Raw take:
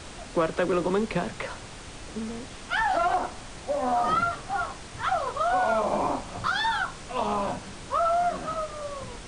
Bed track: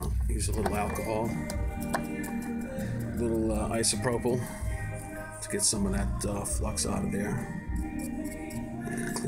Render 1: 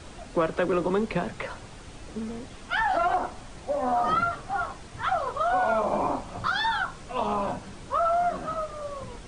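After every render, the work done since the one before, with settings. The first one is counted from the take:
broadband denoise 6 dB, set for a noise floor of −42 dBFS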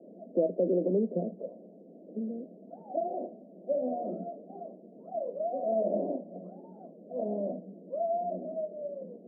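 Chebyshev band-pass filter 180–660 Hz, order 5
parametric band 320 Hz −2 dB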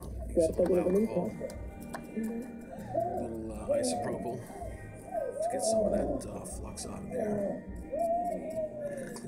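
mix in bed track −11 dB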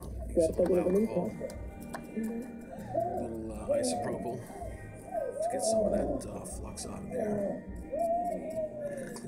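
no processing that can be heard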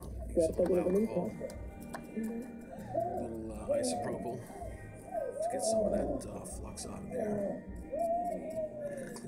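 level −2.5 dB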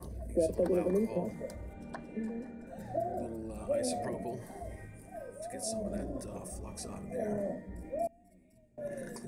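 0:01.73–0:02.67: high-frequency loss of the air 81 metres
0:04.85–0:06.16: parametric band 610 Hz −8.5 dB 1.6 octaves
0:08.07–0:08.78: guitar amp tone stack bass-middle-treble 6-0-2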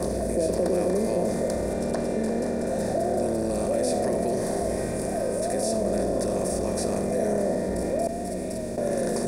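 compressor on every frequency bin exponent 0.4
envelope flattener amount 50%

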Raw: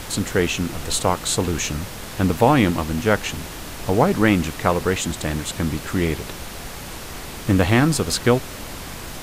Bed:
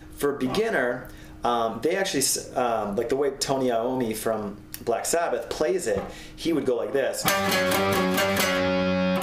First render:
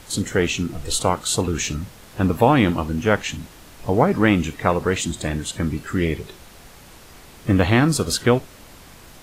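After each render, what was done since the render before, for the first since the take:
noise reduction from a noise print 11 dB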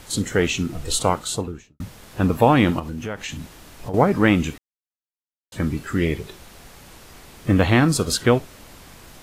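0:01.10–0:01.80: fade out and dull
0:02.79–0:03.94: downward compressor 4 to 1, threshold −27 dBFS
0:04.58–0:05.52: silence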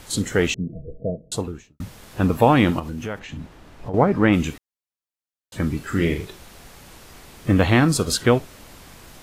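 0:00.54–0:01.32: Chebyshev low-pass with heavy ripple 670 Hz, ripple 9 dB
0:03.18–0:04.32: low-pass filter 1,300 Hz → 2,300 Hz 6 dB per octave
0:05.84–0:06.25: flutter between parallel walls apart 7 metres, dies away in 0.32 s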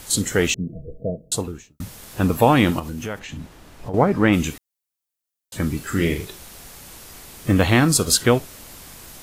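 high-shelf EQ 5,700 Hz +11 dB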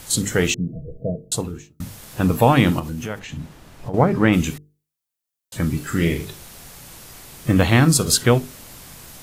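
parametric band 140 Hz +6 dB 0.77 octaves
mains-hum notches 50/100/150/200/250/300/350/400/450 Hz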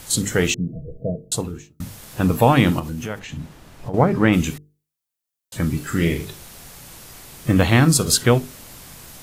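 no processing that can be heard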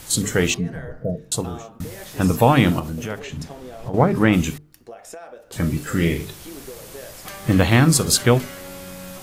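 mix in bed −14.5 dB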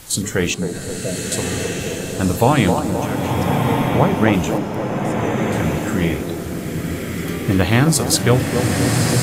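delay with a band-pass on its return 264 ms, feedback 59%, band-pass 520 Hz, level −5 dB
slow-attack reverb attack 1,320 ms, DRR 1 dB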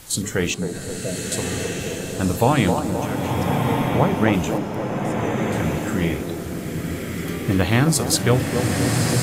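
level −3 dB

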